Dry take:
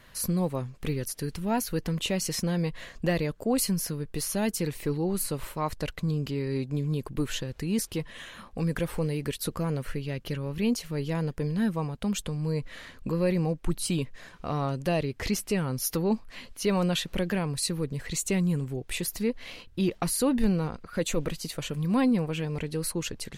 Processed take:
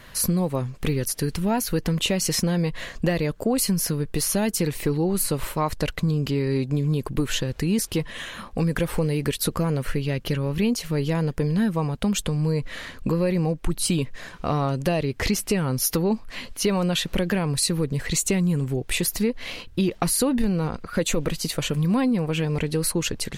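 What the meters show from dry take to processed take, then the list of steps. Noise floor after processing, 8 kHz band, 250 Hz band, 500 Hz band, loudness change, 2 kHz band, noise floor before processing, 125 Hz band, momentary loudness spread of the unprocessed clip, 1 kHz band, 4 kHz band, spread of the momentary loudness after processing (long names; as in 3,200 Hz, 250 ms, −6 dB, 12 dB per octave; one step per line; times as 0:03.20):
−43 dBFS, +6.5 dB, +4.5 dB, +4.5 dB, +5.0 dB, +6.0 dB, −51 dBFS, +5.5 dB, 7 LU, +4.5 dB, +6.5 dB, 5 LU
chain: downward compressor, threshold −27 dBFS, peak gain reduction 8.5 dB
level +8.5 dB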